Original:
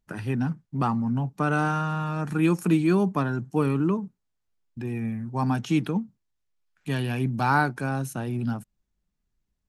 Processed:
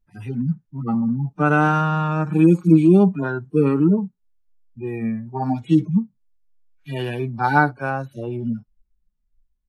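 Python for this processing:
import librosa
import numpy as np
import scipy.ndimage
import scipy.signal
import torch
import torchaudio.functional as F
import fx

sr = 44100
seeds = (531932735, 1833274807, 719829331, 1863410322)

y = fx.hpss_only(x, sr, part='harmonic')
y = fx.high_shelf(y, sr, hz=4100.0, db=fx.steps((0.0, -4.5), (7.9, -10.5)))
y = fx.noise_reduce_blind(y, sr, reduce_db=11)
y = fx.low_shelf(y, sr, hz=64.0, db=10.5)
y = y * 10.0 ** (8.0 / 20.0)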